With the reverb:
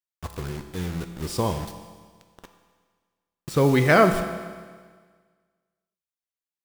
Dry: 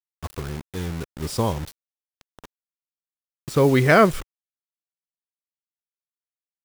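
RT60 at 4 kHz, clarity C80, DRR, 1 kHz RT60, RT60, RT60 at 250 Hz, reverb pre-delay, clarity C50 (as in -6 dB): 1.6 s, 10.0 dB, 6.5 dB, 1.6 s, 1.6 s, 1.6 s, 6 ms, 8.5 dB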